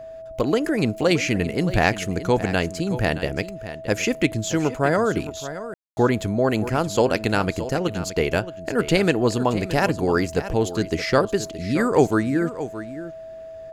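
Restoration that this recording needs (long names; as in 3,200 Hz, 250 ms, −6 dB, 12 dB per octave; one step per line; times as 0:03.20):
notch filter 650 Hz, Q 30
ambience match 0:05.74–0:05.97
echo removal 622 ms −13 dB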